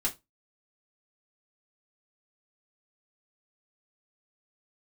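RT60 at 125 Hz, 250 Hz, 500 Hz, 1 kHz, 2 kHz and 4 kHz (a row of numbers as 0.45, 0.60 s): 0.25, 0.25, 0.20, 0.20, 0.15, 0.15 s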